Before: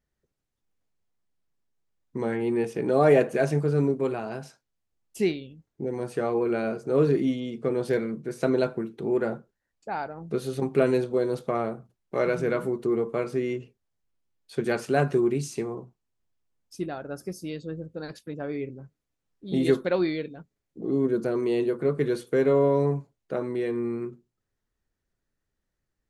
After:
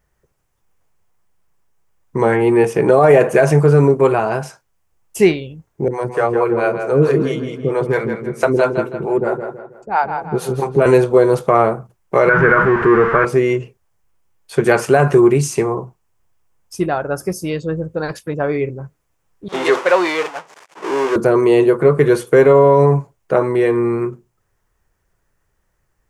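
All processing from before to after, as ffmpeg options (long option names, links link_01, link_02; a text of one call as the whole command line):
ffmpeg -i in.wav -filter_complex "[0:a]asettb=1/sr,asplit=3[link_01][link_02][link_03];[link_01]atrim=end=5.884[link_04];[link_02]atrim=start=5.88:end=10.86,asetpts=PTS-STARTPTS,afade=type=in:duration=0.004:curve=qsin,afade=type=out:start_time=4.976:duration=0.004:curve=qsin,acrossover=split=420[link_05][link_06];[link_05]aeval=exprs='val(0)*(1-1/2+1/2*cos(2*PI*4.5*n/s))':channel_layout=same[link_07];[link_06]aeval=exprs='val(0)*(1-1/2-1/2*cos(2*PI*4.5*n/s))':channel_layout=same[link_08];[link_07][link_08]amix=inputs=2:normalize=0,asplit=2[link_09][link_10];[link_10]adelay=162,lowpass=frequency=4800:poles=1,volume=-7dB,asplit=2[link_11][link_12];[link_12]adelay=162,lowpass=frequency=4800:poles=1,volume=0.39,asplit=2[link_13][link_14];[link_14]adelay=162,lowpass=frequency=4800:poles=1,volume=0.39,asplit=2[link_15][link_16];[link_16]adelay=162,lowpass=frequency=4800:poles=1,volume=0.39,asplit=2[link_17][link_18];[link_18]adelay=162,lowpass=frequency=4800:poles=1,volume=0.39[link_19];[link_09][link_11][link_13][link_15][link_17][link_19]amix=inputs=6:normalize=0,atrim=end_sample=219618[link_20];[link_03]atrim=start=10.856[link_21];[link_04][link_20]acrossfade=duration=0.004:curve1=hsin:curve2=qsin[link_22];[link_22][link_21]acrossfade=duration=0.004:curve1=qsin:curve2=hsin,asettb=1/sr,asplit=3[link_23][link_24][link_25];[link_23]atrim=end=12.294[link_26];[link_24]atrim=start=12.29:end=13.25,asetpts=PTS-STARTPTS,afade=type=in:duration=0.004:curve=qsin,afade=type=out:start_time=0.956:duration=0.004:curve=qsin,aeval=exprs='val(0)+0.5*0.0316*sgn(val(0))':channel_layout=same,lowpass=frequency=1600:width_type=q:width=4.1,equalizer=frequency=670:width=0.99:gain=-5.5[link_27];[link_25]atrim=start=13.246[link_28];[link_26][link_27]acrossfade=duration=0.004:curve1=hsin:curve2=qsin[link_29];[link_29][link_28]acrossfade=duration=0.004:curve1=qsin:curve2=hsin,asettb=1/sr,asplit=3[link_30][link_31][link_32];[link_30]atrim=end=19.484[link_33];[link_31]atrim=start=19.48:end=21.16,asetpts=PTS-STARTPTS,afade=type=in:duration=0.004:curve=qsin,afade=type=out:start_time=1.676:duration=0.004:curve=qsin,aeval=exprs='val(0)+0.5*0.0335*sgn(val(0))':channel_layout=same,highpass=560,lowpass=5900,agate=range=-33dB:threshold=-34dB:ratio=3:release=100:detection=peak[link_34];[link_32]atrim=start=21.156[link_35];[link_33][link_34]acrossfade=duration=0.004:curve1=hsin:curve2=qsin[link_36];[link_36][link_35]acrossfade=duration=0.004:curve1=qsin:curve2=hsin,equalizer=frequency=250:width_type=o:width=0.67:gain=-9,equalizer=frequency=1000:width_type=o:width=0.67:gain=5,equalizer=frequency=4000:width_type=o:width=0.67:gain=-8,alimiter=level_in=16.5dB:limit=-1dB:release=50:level=0:latency=1,volume=-1dB" out.wav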